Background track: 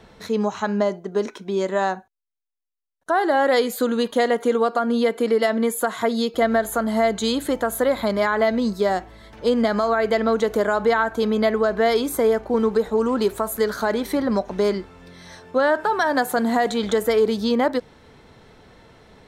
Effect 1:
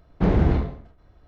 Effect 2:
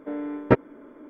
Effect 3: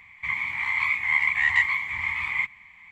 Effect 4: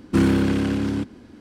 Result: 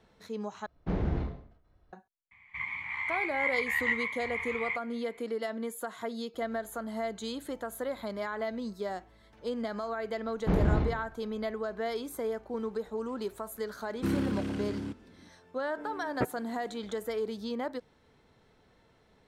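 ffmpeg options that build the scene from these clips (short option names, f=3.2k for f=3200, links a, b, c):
-filter_complex "[1:a]asplit=2[a][b];[0:a]volume=-15dB[c];[3:a]aemphasis=mode=reproduction:type=50fm[d];[c]asplit=2[e][f];[e]atrim=end=0.664[g];[a]atrim=end=1.27,asetpts=PTS-STARTPTS,volume=-11.5dB[h];[f]atrim=start=1.926[i];[d]atrim=end=2.91,asetpts=PTS-STARTPTS,volume=-7.5dB,afade=t=in:d=0.004:c=hsin,afade=t=out:st=2.906:d=0.004:c=hsin,adelay=2310[j];[b]atrim=end=1.27,asetpts=PTS-STARTPTS,volume=-7dB,afade=t=in:d=0.004:c=hsin,afade=t=out:st=1.266:d=0.004:c=hsin,adelay=452466S[k];[4:a]atrim=end=1.4,asetpts=PTS-STARTPTS,volume=-12.5dB,afade=t=in:d=0.004:c=hsin,afade=t=out:st=1.396:d=0.004:c=hsin,adelay=13890[l];[2:a]atrim=end=1.09,asetpts=PTS-STARTPTS,volume=-13dB,afade=t=in:d=0.004:c=hsin,afade=t=out:st=1.086:d=0.004:c=hsin,adelay=15700[m];[g][h]acrossfade=d=0.004:c1=hsin:c2=hsin[n];[n][i]acrossfade=d=0.004:c1=hsin:c2=hsin[o];[o][j][k][l][m]amix=inputs=5:normalize=0"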